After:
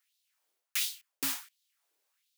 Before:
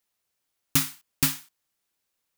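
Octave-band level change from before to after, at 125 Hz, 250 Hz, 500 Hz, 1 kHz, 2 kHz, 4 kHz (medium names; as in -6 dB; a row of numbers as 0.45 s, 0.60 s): -28.5 dB, -15.0 dB, -8.5 dB, -9.0 dB, -5.0 dB, -4.5 dB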